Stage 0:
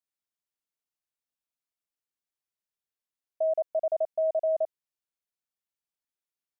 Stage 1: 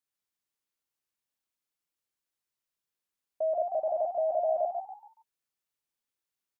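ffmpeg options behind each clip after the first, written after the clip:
-filter_complex "[0:a]bandreject=f=660:w=12,asplit=2[a][b];[b]asplit=4[c][d][e][f];[c]adelay=141,afreqshift=65,volume=-4.5dB[g];[d]adelay=282,afreqshift=130,volume=-14.1dB[h];[e]adelay=423,afreqshift=195,volume=-23.8dB[i];[f]adelay=564,afreqshift=260,volume=-33.4dB[j];[g][h][i][j]amix=inputs=4:normalize=0[k];[a][k]amix=inputs=2:normalize=0,volume=1.5dB"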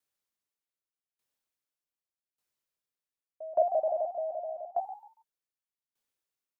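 -af "equalizer=f=520:t=o:w=0.77:g=3,aeval=exprs='val(0)*pow(10,-20*if(lt(mod(0.84*n/s,1),2*abs(0.84)/1000),1-mod(0.84*n/s,1)/(2*abs(0.84)/1000),(mod(0.84*n/s,1)-2*abs(0.84)/1000)/(1-2*abs(0.84)/1000))/20)':c=same,volume=4dB"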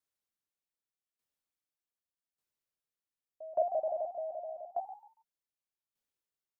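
-af "lowshelf=f=350:g=4,volume=-5.5dB"

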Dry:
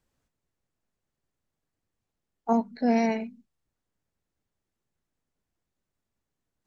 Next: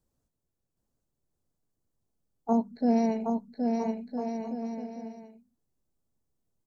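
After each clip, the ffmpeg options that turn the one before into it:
-filter_complex "[0:a]equalizer=f=2.2k:w=0.71:g=-14,asplit=2[a][b];[b]aecho=0:1:770|1309|1686|1950|2135:0.631|0.398|0.251|0.158|0.1[c];[a][c]amix=inputs=2:normalize=0"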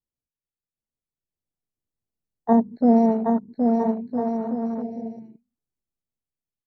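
-af "afwtdn=0.0112,dynaudnorm=f=410:g=7:m=9.5dB,volume=-1dB"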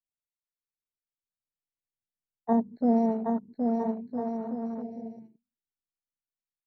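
-af "agate=range=-7dB:threshold=-43dB:ratio=16:detection=peak,volume=-7dB"

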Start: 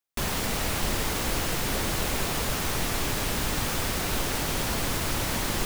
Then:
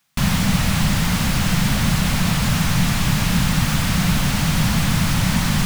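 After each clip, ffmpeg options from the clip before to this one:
-filter_complex "[0:a]alimiter=limit=-20.5dB:level=0:latency=1,asplit=2[a][b];[b]highpass=f=720:p=1,volume=27dB,asoftclip=type=tanh:threshold=-20.5dB[c];[a][c]amix=inputs=2:normalize=0,lowpass=f=5.2k:p=1,volume=-6dB,lowshelf=f=260:t=q:w=3:g=13.5,volume=3.5dB"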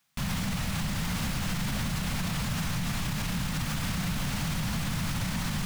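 -af "alimiter=limit=-16.5dB:level=0:latency=1:release=59,volume=-6dB"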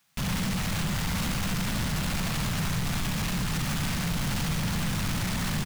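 -filter_complex "[0:a]aecho=1:1:71:0.531,asplit=2[a][b];[b]aeval=exprs='0.0266*(abs(mod(val(0)/0.0266+3,4)-2)-1)':c=same,volume=-4.5dB[c];[a][c]amix=inputs=2:normalize=0"

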